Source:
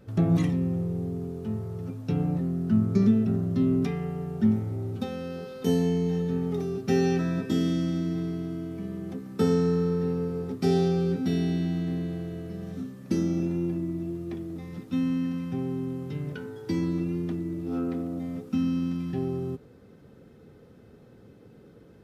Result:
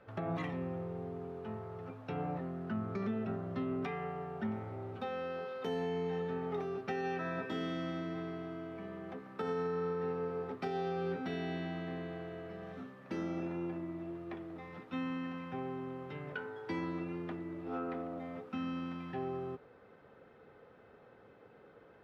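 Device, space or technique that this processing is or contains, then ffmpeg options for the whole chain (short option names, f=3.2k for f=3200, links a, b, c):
DJ mixer with the lows and highs turned down: -filter_complex "[0:a]acrossover=split=580 3400:gain=0.1 1 0.141[a][b][c];[a][b][c]amix=inputs=3:normalize=0,highshelf=f=2.7k:g=-10,alimiter=level_in=9.5dB:limit=-24dB:level=0:latency=1:release=164,volume=-9.5dB,volume=5.5dB"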